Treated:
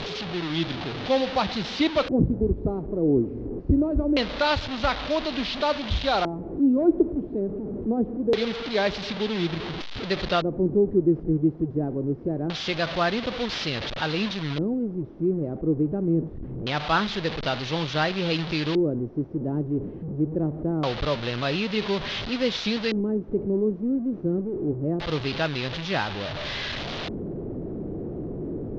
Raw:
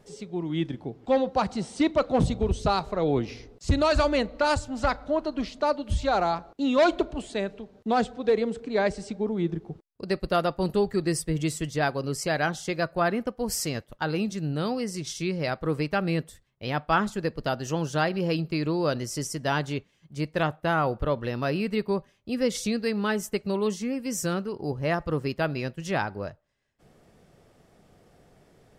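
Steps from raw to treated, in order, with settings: one-bit delta coder 32 kbps, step -27 dBFS; LFO low-pass square 0.24 Hz 340–3700 Hz

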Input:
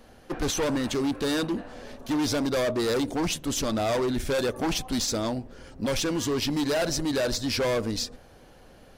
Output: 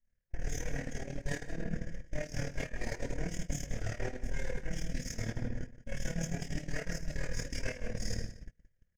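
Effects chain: comb filter that takes the minimum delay 0.58 ms; tone controls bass +6 dB, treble +13 dB; comb 4.2 ms, depth 31%; flange 0.29 Hz, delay 0.9 ms, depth 8 ms, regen -63%; FFT filter 170 Hz 0 dB, 270 Hz -13 dB, 540 Hz +1 dB, 1.2 kHz -17 dB, 1.7 kHz +4 dB, 2.4 kHz +1 dB, 3.9 kHz -22 dB, 6.2 kHz -3 dB, 9.2 kHz -19 dB, 13 kHz -22 dB; simulated room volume 360 m³, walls mixed, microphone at 2.8 m; peak limiter -12 dBFS, peak gain reduction 6 dB; hum notches 60/120/180/240/300 Hz; reverse; compression 10:1, threshold -28 dBFS, peak gain reduction 13 dB; reverse; AM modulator 38 Hz, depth 50%; gate -33 dBFS, range -35 dB; on a send: delay 173 ms -15.5 dB; on the sum: trim +1.5 dB

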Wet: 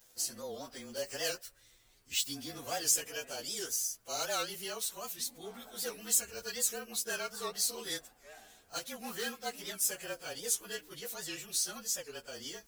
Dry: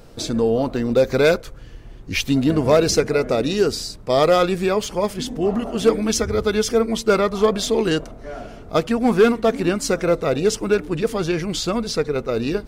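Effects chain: frequency axis rescaled in octaves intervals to 108%; pre-emphasis filter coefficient 0.97; warped record 78 rpm, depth 160 cents

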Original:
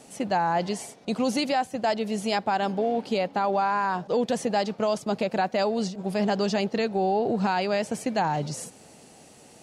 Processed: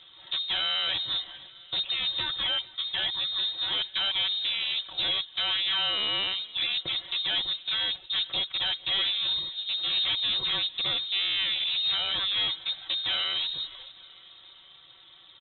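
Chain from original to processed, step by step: wavefolder -22.5 dBFS; granular stretch 1.6×, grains 27 ms; on a send: feedback delay 451 ms, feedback 59%, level -23 dB; on the sum: frequency inversion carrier 3.9 kHz

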